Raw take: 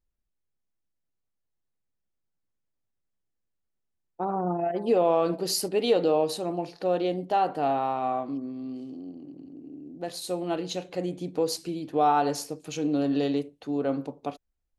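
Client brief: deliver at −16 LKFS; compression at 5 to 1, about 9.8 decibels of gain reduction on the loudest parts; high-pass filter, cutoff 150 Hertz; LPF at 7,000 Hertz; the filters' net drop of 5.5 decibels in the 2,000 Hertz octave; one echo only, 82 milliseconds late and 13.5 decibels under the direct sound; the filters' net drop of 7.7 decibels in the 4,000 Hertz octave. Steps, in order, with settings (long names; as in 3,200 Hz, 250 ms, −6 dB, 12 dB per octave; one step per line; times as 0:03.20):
high-pass filter 150 Hz
low-pass filter 7,000 Hz
parametric band 2,000 Hz −6 dB
parametric band 4,000 Hz −7.5 dB
downward compressor 5 to 1, threshold −29 dBFS
single-tap delay 82 ms −13.5 dB
level +18.5 dB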